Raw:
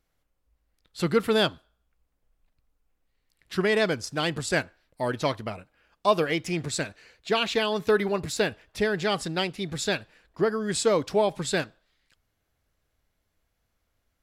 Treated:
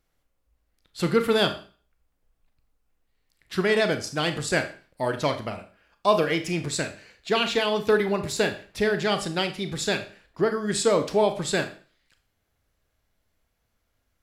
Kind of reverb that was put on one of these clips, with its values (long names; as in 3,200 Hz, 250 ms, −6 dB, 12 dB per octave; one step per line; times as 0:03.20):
four-comb reverb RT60 0.4 s, combs from 27 ms, DRR 8 dB
level +1 dB